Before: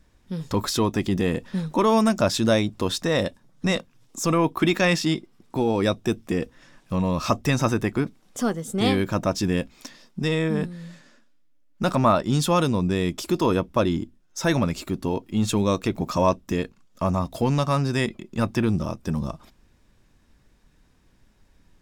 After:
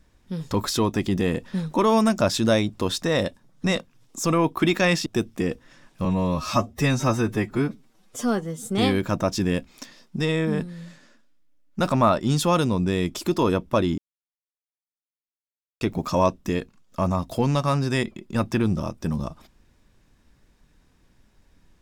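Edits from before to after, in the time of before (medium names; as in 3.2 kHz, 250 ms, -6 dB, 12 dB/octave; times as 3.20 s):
5.06–5.97 s: delete
6.96–8.72 s: stretch 1.5×
14.01–15.84 s: mute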